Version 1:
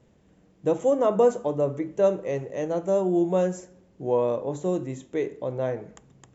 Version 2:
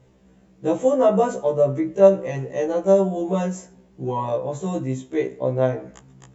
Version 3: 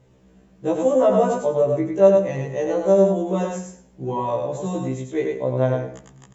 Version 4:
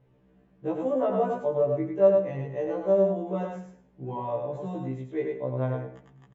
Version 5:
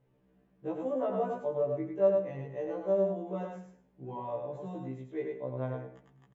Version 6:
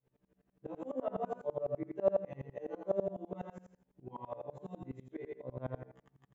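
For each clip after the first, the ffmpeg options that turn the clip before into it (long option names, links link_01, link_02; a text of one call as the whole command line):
ffmpeg -i in.wav -af "afftfilt=real='re*1.73*eq(mod(b,3),0)':imag='im*1.73*eq(mod(b,3),0)':win_size=2048:overlap=0.75,volume=6.5dB" out.wav
ffmpeg -i in.wav -af "aecho=1:1:102|204|306:0.668|0.14|0.0295,volume=-1dB" out.wav
ffmpeg -i in.wav -af "lowpass=2600,aecho=1:1:6.9:0.36,volume=-8dB" out.wav
ffmpeg -i in.wav -af "equalizer=frequency=86:width_type=o:width=0.46:gain=-12.5,volume=-6dB" out.wav
ffmpeg -i in.wav -af "aeval=exprs='val(0)*pow(10,-26*if(lt(mod(-12*n/s,1),2*abs(-12)/1000),1-mod(-12*n/s,1)/(2*abs(-12)/1000),(mod(-12*n/s,1)-2*abs(-12)/1000)/(1-2*abs(-12)/1000))/20)':channel_layout=same,volume=1.5dB" out.wav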